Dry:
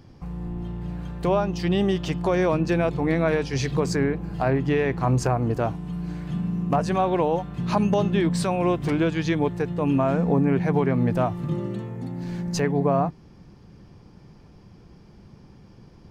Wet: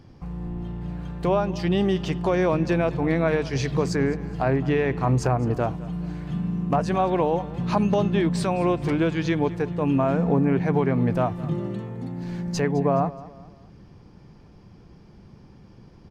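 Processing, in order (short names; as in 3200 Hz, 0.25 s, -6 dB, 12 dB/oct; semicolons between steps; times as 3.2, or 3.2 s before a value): high shelf 7400 Hz -6 dB; feedback echo 0.21 s, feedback 40%, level -18.5 dB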